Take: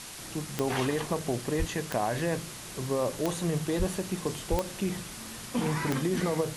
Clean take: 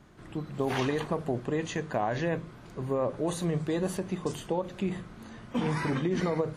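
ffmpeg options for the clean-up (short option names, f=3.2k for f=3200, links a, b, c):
-filter_complex "[0:a]adeclick=t=4,asplit=3[a][b][c];[a]afade=t=out:st=1.58:d=0.02[d];[b]highpass=f=140:w=0.5412,highpass=f=140:w=1.3066,afade=t=in:st=1.58:d=0.02,afade=t=out:st=1.7:d=0.02[e];[c]afade=t=in:st=1.7:d=0.02[f];[d][e][f]amix=inputs=3:normalize=0,asplit=3[g][h][i];[g]afade=t=out:st=3.78:d=0.02[j];[h]highpass=f=140:w=0.5412,highpass=f=140:w=1.3066,afade=t=in:st=3.78:d=0.02,afade=t=out:st=3.9:d=0.02[k];[i]afade=t=in:st=3.9:d=0.02[l];[j][k][l]amix=inputs=3:normalize=0,asplit=3[m][n][o];[m]afade=t=out:st=4.5:d=0.02[p];[n]highpass=f=140:w=0.5412,highpass=f=140:w=1.3066,afade=t=in:st=4.5:d=0.02,afade=t=out:st=4.62:d=0.02[q];[o]afade=t=in:st=4.62:d=0.02[r];[p][q][r]amix=inputs=3:normalize=0,afwtdn=0.0089"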